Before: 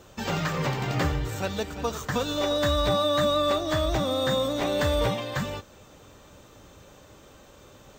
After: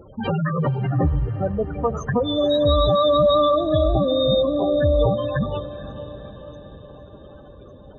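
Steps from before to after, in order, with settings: spectral gate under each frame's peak -10 dB strong; echo that smears into a reverb 476 ms, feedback 61%, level -14.5 dB; trim +8 dB

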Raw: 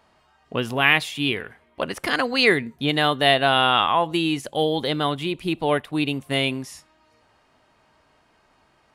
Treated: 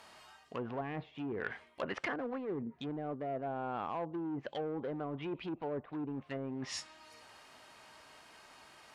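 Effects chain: dynamic bell 3.3 kHz, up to +3 dB, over -27 dBFS, Q 0.88; low-pass that closes with the level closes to 470 Hz, closed at -18 dBFS; in parallel at -7 dB: wavefolder -26.5 dBFS; on the sum: low-pass that closes with the level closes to 1.2 kHz, closed at -21 dBFS; reverse; compression 6:1, threshold -33 dBFS, peak gain reduction 15 dB; reverse; tilt EQ +2.5 dB/octave

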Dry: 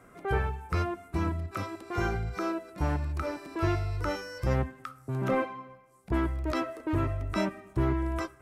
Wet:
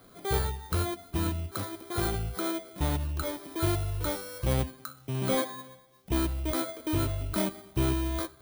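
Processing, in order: bit-reversed sample order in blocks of 16 samples

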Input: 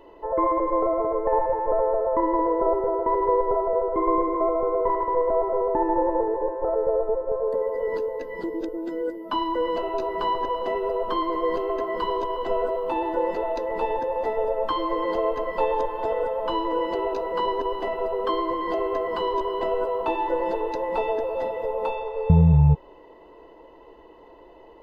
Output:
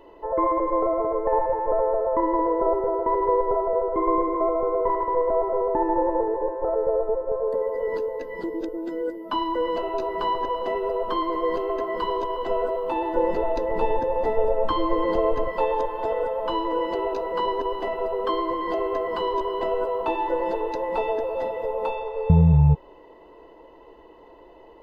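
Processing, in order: 13.15–15.48 s: bass shelf 250 Hz +11 dB

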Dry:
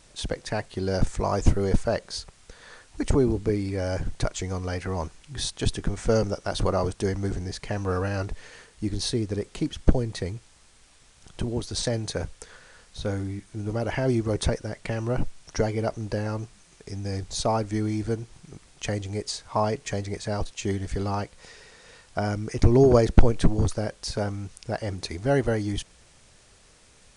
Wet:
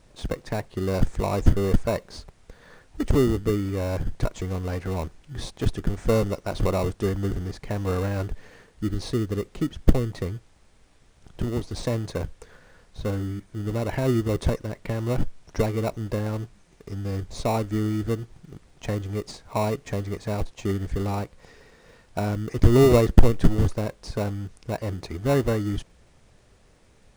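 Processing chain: treble shelf 2.7 kHz -10 dB; in parallel at -6 dB: sample-rate reducer 1.6 kHz, jitter 0%; on the sum: trim -1.5 dB

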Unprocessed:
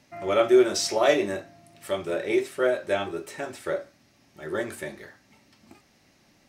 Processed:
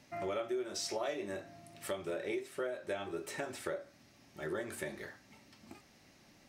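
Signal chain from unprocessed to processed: compression 6:1, threshold -34 dBFS, peak gain reduction 19 dB; trim -1.5 dB

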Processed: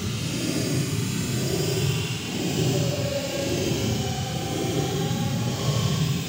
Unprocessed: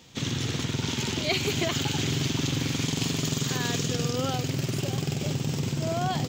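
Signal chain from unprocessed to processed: high-pass 110 Hz; Paulstretch 21×, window 0.05 s, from 4.71 s; trim +4.5 dB

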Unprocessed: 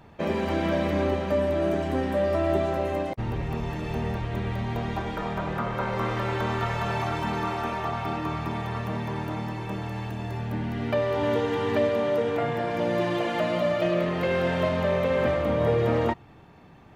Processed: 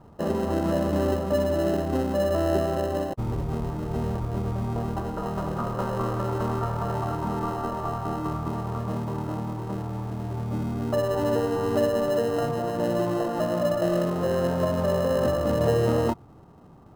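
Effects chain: Chebyshev low-pass 1.3 kHz, order 4; in parallel at -10 dB: sample-and-hold 38×

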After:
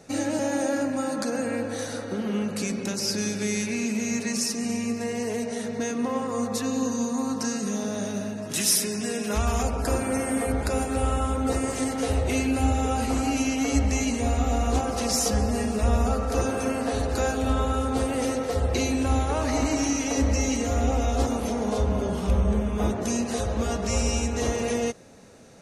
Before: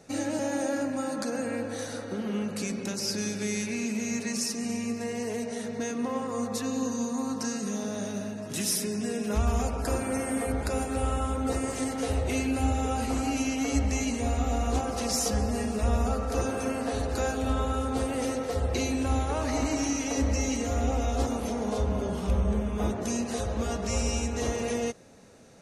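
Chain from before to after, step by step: 8.51–9.63 s: tilt shelf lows -3.5 dB, about 690 Hz; trim +3.5 dB

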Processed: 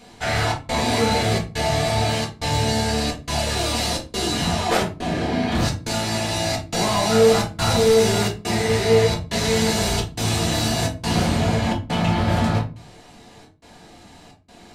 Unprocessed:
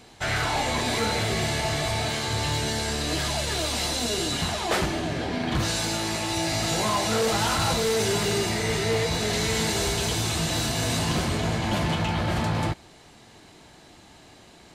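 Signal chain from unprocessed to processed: trance gate "xxxxxx..xx" 174 bpm -60 dB; simulated room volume 170 m³, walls furnished, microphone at 1.8 m

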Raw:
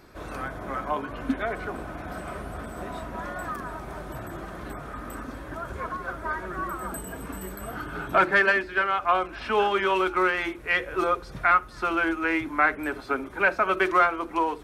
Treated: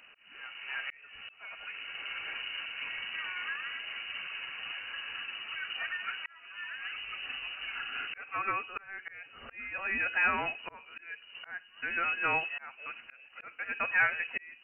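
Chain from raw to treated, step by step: frequency inversion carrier 2.9 kHz; slow attack 793 ms; trim -4 dB

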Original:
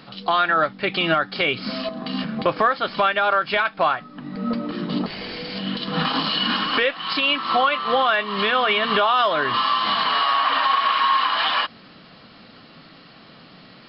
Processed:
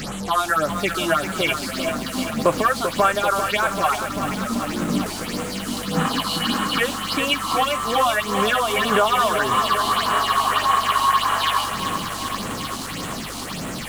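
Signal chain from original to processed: one-bit delta coder 64 kbps, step -24.5 dBFS; phase shifter stages 6, 1.7 Hz, lowest notch 120–4900 Hz; hum 50 Hz, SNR 21 dB; bit-crushed delay 390 ms, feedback 80%, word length 6-bit, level -8 dB; trim +2 dB

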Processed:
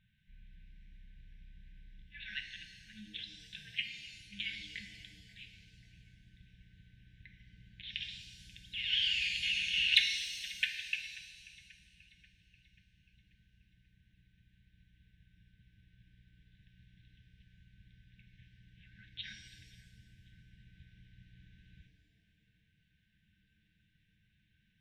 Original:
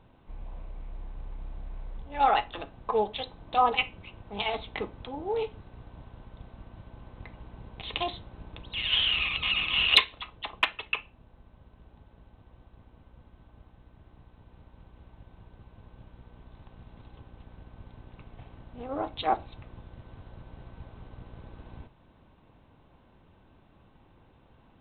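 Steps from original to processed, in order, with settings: 3.55–4.03 s: ring modulator 89 Hz -> 250 Hz; bass shelf 160 Hz -11 dB; feedback echo behind a band-pass 536 ms, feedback 52%, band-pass 1.5 kHz, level -20 dB; FFT band-reject 220–1500 Hz; pitch-shifted reverb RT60 1.5 s, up +7 st, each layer -8 dB, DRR 6 dB; trim -6.5 dB

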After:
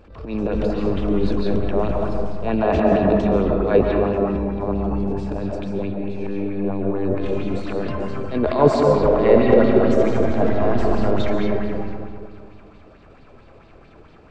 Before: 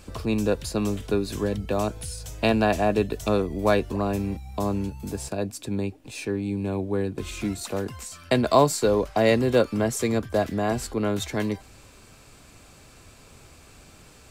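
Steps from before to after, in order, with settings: peaking EQ 120 Hz -5.5 dB 0.66 oct; transient shaper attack -12 dB, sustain +12 dB; tape spacing loss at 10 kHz 39 dB; 8.80–11.11 s: multi-head delay 78 ms, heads first and third, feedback 48%, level -8 dB; algorithmic reverb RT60 2.1 s, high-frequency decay 0.4×, pre-delay 100 ms, DRR -0.5 dB; sweeping bell 4.5 Hz 420–4400 Hz +8 dB; trim +1.5 dB

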